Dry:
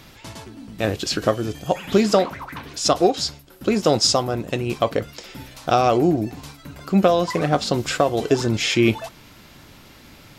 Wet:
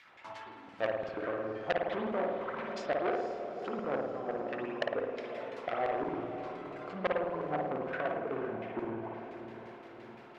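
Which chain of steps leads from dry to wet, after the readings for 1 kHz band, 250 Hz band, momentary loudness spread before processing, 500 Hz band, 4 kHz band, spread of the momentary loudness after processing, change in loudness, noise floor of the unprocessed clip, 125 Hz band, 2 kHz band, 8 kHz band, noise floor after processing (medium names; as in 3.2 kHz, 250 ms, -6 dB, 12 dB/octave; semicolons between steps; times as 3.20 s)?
-13.0 dB, -18.0 dB, 20 LU, -12.5 dB, -25.5 dB, 13 LU, -15.5 dB, -47 dBFS, -22.5 dB, -10.0 dB, under -35 dB, -52 dBFS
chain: low-pass that closes with the level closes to 420 Hz, closed at -17 dBFS; waveshaping leveller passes 1; flange 0.36 Hz, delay 8.2 ms, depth 4.4 ms, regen -72%; LFO band-pass saw down 5.8 Hz 570–2300 Hz; echo that smears into a reverb 472 ms, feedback 58%, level -10 dB; spring tank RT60 1.1 s, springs 53 ms, chirp 65 ms, DRR 0 dB; transformer saturation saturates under 1.8 kHz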